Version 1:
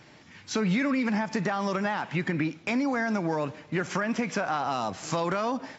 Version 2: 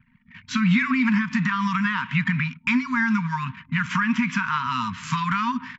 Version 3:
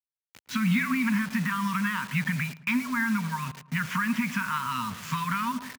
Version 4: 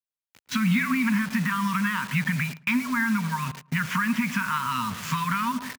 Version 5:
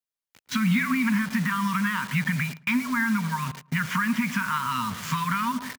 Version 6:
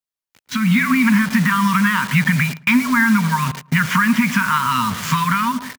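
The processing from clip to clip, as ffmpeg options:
ffmpeg -i in.wav -af "highshelf=frequency=3900:width_type=q:width=1.5:gain=-7,anlmdn=0.0251,afftfilt=real='re*(1-between(b*sr/4096,260,910))':imag='im*(1-between(b*sr/4096,260,910))':win_size=4096:overlap=0.75,volume=7dB" out.wav
ffmpeg -i in.wav -filter_complex "[0:a]acrusher=bits=5:mix=0:aa=0.000001,highpass=61,asplit=2[link_01][link_02];[link_02]adelay=110,lowpass=frequency=1300:poles=1,volume=-15dB,asplit=2[link_03][link_04];[link_04]adelay=110,lowpass=frequency=1300:poles=1,volume=0.46,asplit=2[link_05][link_06];[link_06]adelay=110,lowpass=frequency=1300:poles=1,volume=0.46,asplit=2[link_07][link_08];[link_08]adelay=110,lowpass=frequency=1300:poles=1,volume=0.46[link_09];[link_01][link_03][link_05][link_07][link_09]amix=inputs=5:normalize=0,volume=-5dB" out.wav
ffmpeg -i in.wav -filter_complex "[0:a]agate=range=-10dB:threshold=-40dB:ratio=16:detection=peak,asplit=2[link_01][link_02];[link_02]acompressor=threshold=-35dB:ratio=6,volume=0dB[link_03];[link_01][link_03]amix=inputs=2:normalize=0" out.wav
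ffmpeg -i in.wav -af "bandreject=frequency=2600:width=21" out.wav
ffmpeg -i in.wav -af "dynaudnorm=framelen=260:gausssize=5:maxgain=10.5dB" out.wav

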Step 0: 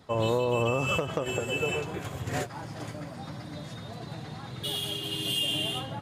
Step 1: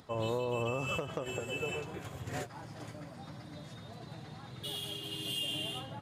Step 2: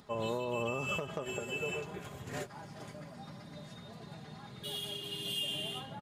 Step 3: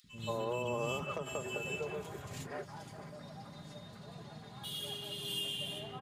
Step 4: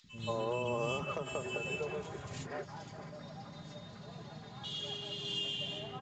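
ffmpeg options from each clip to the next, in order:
ffmpeg -i in.wav -af "acompressor=mode=upward:threshold=-44dB:ratio=2.5,volume=-7.5dB" out.wav
ffmpeg -i in.wav -af "aecho=1:1:4.9:0.44,volume=-1.5dB" out.wav
ffmpeg -i in.wav -filter_complex "[0:a]acrossover=split=260|2200[link_01][link_02][link_03];[link_01]adelay=40[link_04];[link_02]adelay=180[link_05];[link_04][link_05][link_03]amix=inputs=3:normalize=0" out.wav
ffmpeg -i in.wav -af "volume=1dB" -ar 16000 -c:a pcm_mulaw out.wav

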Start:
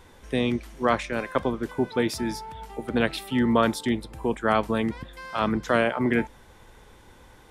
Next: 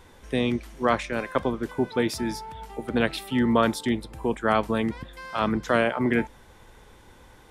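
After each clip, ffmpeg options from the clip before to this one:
ffmpeg -i in.wav -af anull out.wav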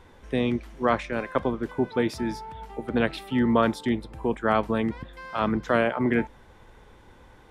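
ffmpeg -i in.wav -af "highshelf=frequency=4600:gain=-11" out.wav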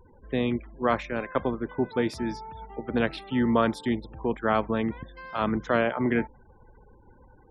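ffmpeg -i in.wav -af "afftfilt=real='re*gte(hypot(re,im),0.00501)':imag='im*gte(hypot(re,im),0.00501)':win_size=1024:overlap=0.75,volume=-1.5dB" out.wav

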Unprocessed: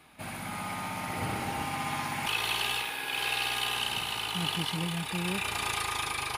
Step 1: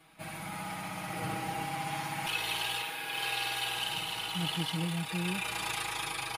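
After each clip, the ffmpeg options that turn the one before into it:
ffmpeg -i in.wav -af "aecho=1:1:6.2:0.94,volume=-5.5dB" out.wav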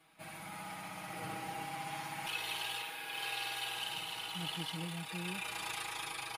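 ffmpeg -i in.wav -af "lowshelf=frequency=180:gain=-6.5,volume=-5.5dB" out.wav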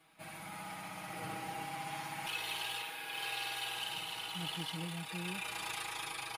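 ffmpeg -i in.wav -af "asoftclip=type=hard:threshold=-31dB" out.wav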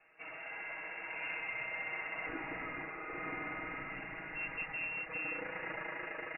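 ffmpeg -i in.wav -af "lowpass=frequency=2500:width_type=q:width=0.5098,lowpass=frequency=2500:width_type=q:width=0.6013,lowpass=frequency=2500:width_type=q:width=0.9,lowpass=frequency=2500:width_type=q:width=2.563,afreqshift=-2900,volume=2dB" out.wav

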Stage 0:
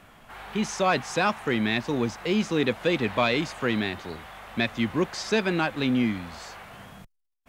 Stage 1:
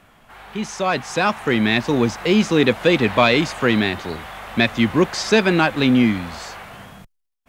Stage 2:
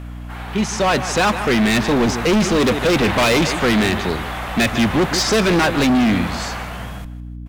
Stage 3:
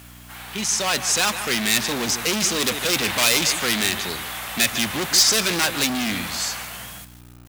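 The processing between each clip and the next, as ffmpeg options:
ffmpeg -i in.wav -af "dynaudnorm=framelen=370:gausssize=7:maxgain=11dB" out.wav
ffmpeg -i in.wav -af "aecho=1:1:156|312|468:0.15|0.0449|0.0135,volume=20dB,asoftclip=hard,volume=-20dB,aeval=exprs='val(0)+0.0141*(sin(2*PI*60*n/s)+sin(2*PI*2*60*n/s)/2+sin(2*PI*3*60*n/s)/3+sin(2*PI*4*60*n/s)/4+sin(2*PI*5*60*n/s)/5)':channel_layout=same,volume=7dB" out.wav
ffmpeg -i in.wav -af "highpass=67,crystalizer=i=9:c=0,acrusher=bits=5:mix=0:aa=0.000001,volume=-12dB" out.wav

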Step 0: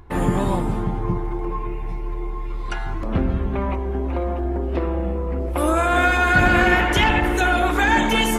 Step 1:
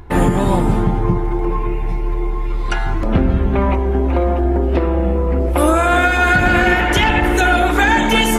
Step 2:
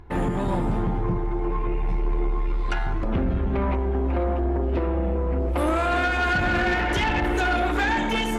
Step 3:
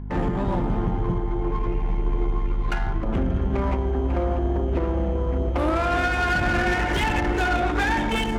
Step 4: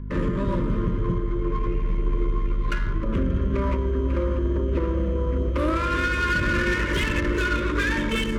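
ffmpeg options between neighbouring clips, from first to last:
ffmpeg -i in.wav -af "bandreject=frequency=1100:width=14,alimiter=limit=-11.5dB:level=0:latency=1:release=425,volume=8dB" out.wav
ffmpeg -i in.wav -af "highshelf=frequency=6800:gain=-11.5,dynaudnorm=framelen=150:gausssize=7:maxgain=11.5dB,asoftclip=type=tanh:threshold=-8.5dB,volume=-8.5dB" out.wav
ffmpeg -i in.wav -filter_complex "[0:a]acrossover=split=110[link_01][link_02];[link_01]acrusher=samples=14:mix=1:aa=0.000001[link_03];[link_03][link_02]amix=inputs=2:normalize=0,adynamicsmooth=sensitivity=5.5:basefreq=2200,aeval=exprs='val(0)+0.0282*(sin(2*PI*50*n/s)+sin(2*PI*2*50*n/s)/2+sin(2*PI*3*50*n/s)/3+sin(2*PI*4*50*n/s)/4+sin(2*PI*5*50*n/s)/5)':channel_layout=same" out.wav
ffmpeg -i in.wav -af "asuperstop=centerf=770:order=12:qfactor=2.5" out.wav

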